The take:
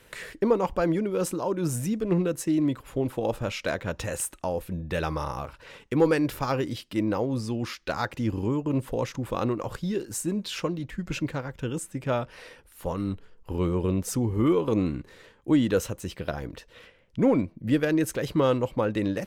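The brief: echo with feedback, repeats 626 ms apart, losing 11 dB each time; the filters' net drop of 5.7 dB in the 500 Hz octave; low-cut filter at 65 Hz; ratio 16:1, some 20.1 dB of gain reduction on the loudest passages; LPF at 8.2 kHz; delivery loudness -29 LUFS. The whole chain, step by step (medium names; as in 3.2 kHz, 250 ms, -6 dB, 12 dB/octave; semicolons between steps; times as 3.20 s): high-pass 65 Hz; low-pass 8.2 kHz; peaking EQ 500 Hz -7 dB; compression 16:1, threshold -40 dBFS; feedback delay 626 ms, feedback 28%, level -11 dB; trim +16 dB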